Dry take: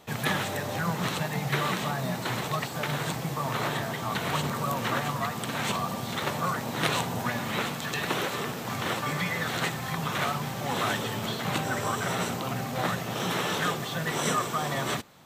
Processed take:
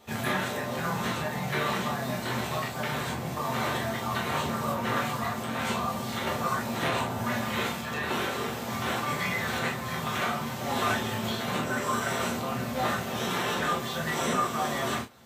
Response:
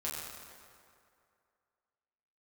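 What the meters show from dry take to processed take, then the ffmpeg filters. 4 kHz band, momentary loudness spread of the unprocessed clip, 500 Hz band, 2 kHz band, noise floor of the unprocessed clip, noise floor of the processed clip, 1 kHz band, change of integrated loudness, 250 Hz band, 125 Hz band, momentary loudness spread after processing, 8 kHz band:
-1.5 dB, 3 LU, +0.5 dB, 0.0 dB, -35 dBFS, -35 dBFS, +0.5 dB, 0.0 dB, +0.5 dB, -2.5 dB, 4 LU, -2.0 dB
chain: -filter_complex "[0:a]acrossover=split=2500[a][b];[b]alimiter=level_in=3dB:limit=-24dB:level=0:latency=1:release=333,volume=-3dB[c];[a][c]amix=inputs=2:normalize=0[d];[1:a]atrim=start_sample=2205,atrim=end_sample=3528[e];[d][e]afir=irnorm=-1:irlink=0"

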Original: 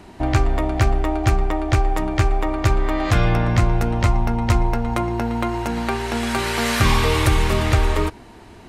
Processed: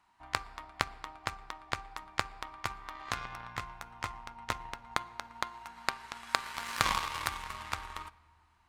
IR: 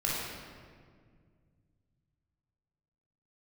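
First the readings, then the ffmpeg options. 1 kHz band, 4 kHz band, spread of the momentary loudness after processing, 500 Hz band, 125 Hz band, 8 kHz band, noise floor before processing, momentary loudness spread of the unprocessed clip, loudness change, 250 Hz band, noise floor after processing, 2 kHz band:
-12.5 dB, -10.5 dB, 12 LU, -24.0 dB, -30.0 dB, -12.0 dB, -43 dBFS, 6 LU, -17.0 dB, -28.5 dB, -66 dBFS, -11.5 dB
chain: -filter_complex "[0:a]lowshelf=f=700:t=q:w=3:g=-12.5,aeval=exprs='0.631*(cos(1*acos(clip(val(0)/0.631,-1,1)))-cos(1*PI/2))+0.251*(cos(3*acos(clip(val(0)/0.631,-1,1)))-cos(3*PI/2))+0.0316*(cos(5*acos(clip(val(0)/0.631,-1,1)))-cos(5*PI/2))':c=same,asplit=2[a][b];[1:a]atrim=start_sample=2205[c];[b][c]afir=irnorm=-1:irlink=0,volume=-27dB[d];[a][d]amix=inputs=2:normalize=0"

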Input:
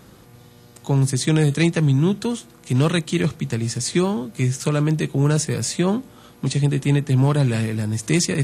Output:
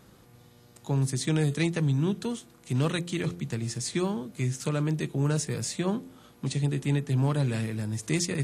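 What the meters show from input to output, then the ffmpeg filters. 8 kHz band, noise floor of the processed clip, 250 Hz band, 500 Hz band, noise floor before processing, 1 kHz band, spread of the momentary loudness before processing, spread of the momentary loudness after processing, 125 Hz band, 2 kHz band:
-8.0 dB, -57 dBFS, -8.5 dB, -8.5 dB, -48 dBFS, -8.0 dB, 7 LU, 7 LU, -8.0 dB, -8.0 dB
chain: -af "bandreject=f=86.98:t=h:w=4,bandreject=f=173.96:t=h:w=4,bandreject=f=260.94:t=h:w=4,bandreject=f=347.92:t=h:w=4,bandreject=f=434.9:t=h:w=4,bandreject=f=521.88:t=h:w=4,volume=-8dB"

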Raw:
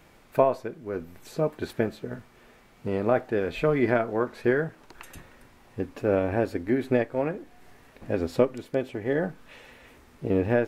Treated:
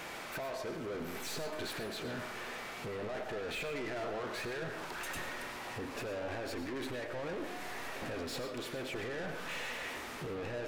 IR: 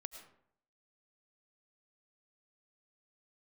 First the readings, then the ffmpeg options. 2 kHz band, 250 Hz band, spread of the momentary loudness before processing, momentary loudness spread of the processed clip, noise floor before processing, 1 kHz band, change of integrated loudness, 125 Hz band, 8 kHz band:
-4.5 dB, -14.5 dB, 14 LU, 3 LU, -56 dBFS, -9.0 dB, -12.5 dB, -14.0 dB, n/a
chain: -filter_complex "[0:a]acompressor=threshold=-31dB:ratio=6,alimiter=level_in=10.5dB:limit=-24dB:level=0:latency=1:release=13,volume=-10.5dB,asplit=2[a][b];[b]highpass=f=720:p=1,volume=24dB,asoftclip=type=tanh:threshold=-34.5dB[c];[a][c]amix=inputs=2:normalize=0,lowpass=f=7.2k:p=1,volume=-6dB[d];[1:a]atrim=start_sample=2205[e];[d][e]afir=irnorm=-1:irlink=0,volume=5dB"

